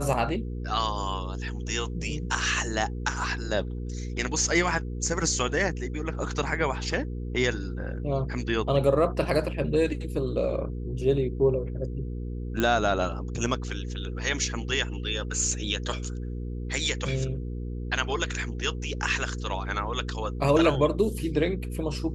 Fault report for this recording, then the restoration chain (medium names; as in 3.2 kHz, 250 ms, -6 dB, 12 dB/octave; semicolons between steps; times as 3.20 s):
hum 60 Hz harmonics 8 -33 dBFS
12.60 s: pop -13 dBFS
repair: de-click; de-hum 60 Hz, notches 8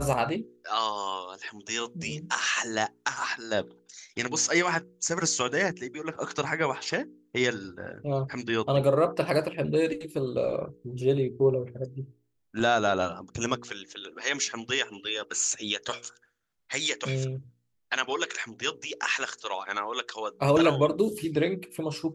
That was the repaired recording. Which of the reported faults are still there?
nothing left